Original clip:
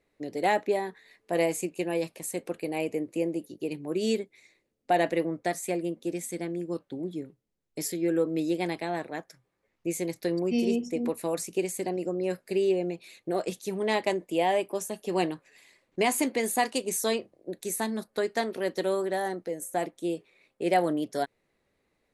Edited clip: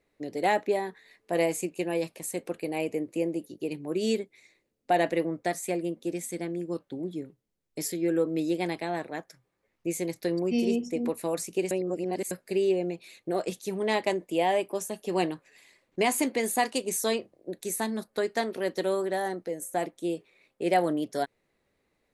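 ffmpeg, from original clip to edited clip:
ffmpeg -i in.wav -filter_complex "[0:a]asplit=3[link_01][link_02][link_03];[link_01]atrim=end=11.712[link_04];[link_02]atrim=start=11.708:end=12.312,asetpts=PTS-STARTPTS,areverse[link_05];[link_03]atrim=start=12.308[link_06];[link_04][link_05]acrossfade=duration=0.004:curve1=hsin:curve2=hsin[link_07];[link_07][link_06]acrossfade=duration=0.004:curve1=hsin:curve2=hsin" out.wav

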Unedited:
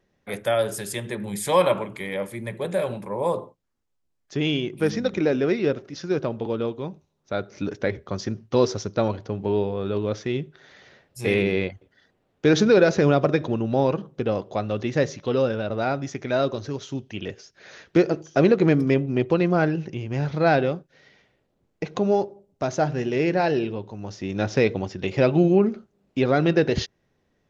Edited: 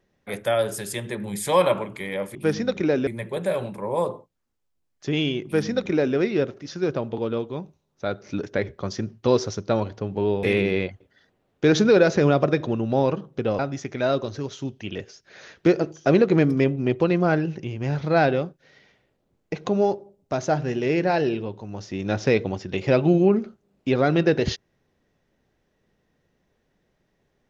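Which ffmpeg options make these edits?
ffmpeg -i in.wav -filter_complex "[0:a]asplit=5[link_01][link_02][link_03][link_04][link_05];[link_01]atrim=end=2.352[link_06];[link_02]atrim=start=4.718:end=5.442[link_07];[link_03]atrim=start=2.348:end=9.712[link_08];[link_04]atrim=start=11.238:end=14.402[link_09];[link_05]atrim=start=15.888[link_10];[link_06][link_07]acrossfade=duration=0.004:curve1=hsin:curve2=hsin[link_11];[link_11][link_08]acrossfade=duration=0.004:curve1=hsin:curve2=hsin[link_12];[link_12][link_09]acrossfade=duration=0.004:curve1=hsin:curve2=hsin[link_13];[link_13][link_10]acrossfade=duration=0.004:curve1=hsin:curve2=hsin" out.wav

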